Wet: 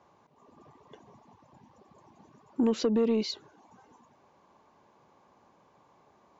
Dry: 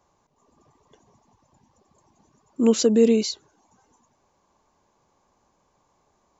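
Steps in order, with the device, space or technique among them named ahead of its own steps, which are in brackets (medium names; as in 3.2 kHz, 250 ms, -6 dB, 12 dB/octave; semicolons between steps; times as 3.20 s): AM radio (band-pass 110–3500 Hz; compression 5:1, threshold -27 dBFS, peak gain reduction 13.5 dB; saturation -23 dBFS, distortion -19 dB); 2.79–3.29 s: low-pass 6.1 kHz 24 dB/octave; trim +5 dB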